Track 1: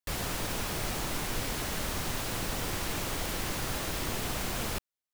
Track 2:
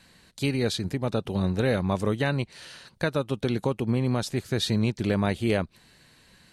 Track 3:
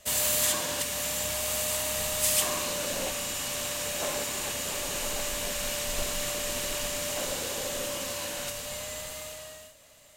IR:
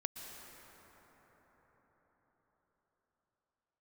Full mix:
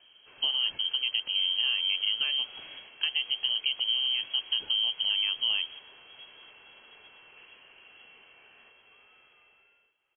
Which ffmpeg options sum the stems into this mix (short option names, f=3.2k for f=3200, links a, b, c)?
-filter_complex "[0:a]adelay=1400,volume=-10.5dB[a];[1:a]volume=2.5dB,asplit=2[b][c];[2:a]adelay=200,volume=-19dB[d];[c]apad=whole_len=287986[e];[a][e]sidechaingate=range=-33dB:threshold=-42dB:ratio=16:detection=peak[f];[f][b]amix=inputs=2:normalize=0,equalizer=f=1.8k:w=0.93:g=-13.5,acompressor=threshold=-27dB:ratio=2.5,volume=0dB[g];[d][g]amix=inputs=2:normalize=0,lowpass=f=2.8k:t=q:w=0.5098,lowpass=f=2.8k:t=q:w=0.6013,lowpass=f=2.8k:t=q:w=0.9,lowpass=f=2.8k:t=q:w=2.563,afreqshift=-3300"